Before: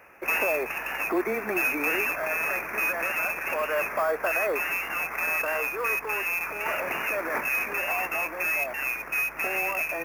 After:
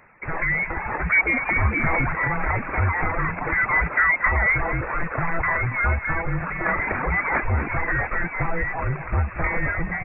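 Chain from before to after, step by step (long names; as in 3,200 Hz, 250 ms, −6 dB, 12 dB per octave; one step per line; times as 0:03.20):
reverb reduction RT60 1 s
automatic gain control gain up to 7.5 dB
on a send: repeating echo 232 ms, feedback 42%, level −12.5 dB
on the sum: voice inversion scrambler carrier 2,600 Hz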